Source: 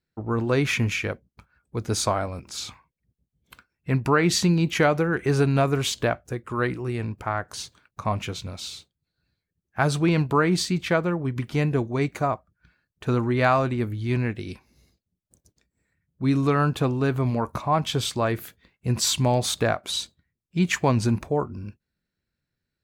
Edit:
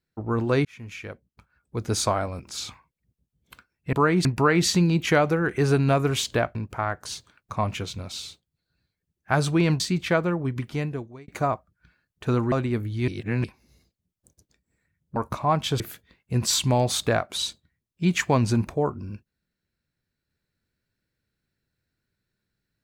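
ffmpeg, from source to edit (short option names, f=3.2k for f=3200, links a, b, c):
-filter_complex "[0:a]asplit=12[a][b][c][d][e][f][g][h][i][j][k][l];[a]atrim=end=0.65,asetpts=PTS-STARTPTS,afade=t=out:st=0.646:d=0.004:c=hsin[m];[b]atrim=start=0.65:end=3.932,asetpts=PTS-STARTPTS,afade=t=in:d=1.2[n];[c]atrim=start=10.278:end=10.602[o];[d]atrim=start=3.928:end=6.232[p];[e]atrim=start=7.028:end=10.282[q];[f]atrim=start=10.598:end=12.08,asetpts=PTS-STARTPTS,afade=t=out:st=0.662:d=0.82[r];[g]atrim=start=12.08:end=13.322,asetpts=PTS-STARTPTS,afade=t=in:d=0.004:c=hsin[s];[h]atrim=start=13.588:end=14.152[t];[i]atrim=start=14.148:end=14.512,asetpts=PTS-STARTPTS,areverse[u];[j]atrim=start=14.508:end=16.232[v];[k]atrim=start=17.388:end=18.032[w];[l]atrim=start=18.338[x];[m][n]concat=n=2:v=0:a=1[y];[y][o]acrossfade=d=0.004:c1=hsin:c2=hsin[z];[z][p]acrossfade=d=0.004:c1=hsin:c2=hsin[aa];[aa][q]acrossfade=d=0.004:c1=hsin:c2=hsin[ab];[r][s]concat=n=2:v=0:a=1[ac];[ab][ac]acrossfade=d=0.004:c1=hsin:c2=hsin[ad];[ad][t]acrossfade=d=0.004:c1=hsin:c2=hsin[ae];[ae][u]acrossfade=d=0.004:c1=hsin:c2=hsin[af];[af][v]acrossfade=d=0.004:c1=hsin:c2=hsin[ag];[ag][w]acrossfade=d=0.004:c1=hsin:c2=hsin[ah];[ah][x]acrossfade=d=0.004:c1=hsin:c2=hsin"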